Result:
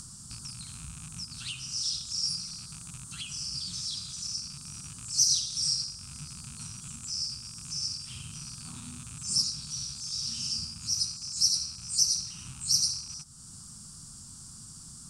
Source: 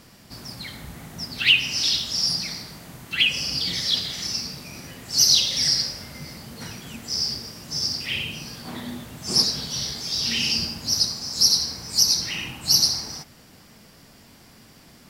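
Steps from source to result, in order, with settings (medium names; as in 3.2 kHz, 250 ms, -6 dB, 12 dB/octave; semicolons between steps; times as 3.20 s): rattle on loud lows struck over -42 dBFS, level -20 dBFS; FFT filter 150 Hz 0 dB, 550 Hz -25 dB, 1.3 kHz -5 dB, 2 kHz -26 dB, 8.8 kHz +15 dB, 13 kHz -17 dB; upward compressor, threshold -26 dBFS; trim -8.5 dB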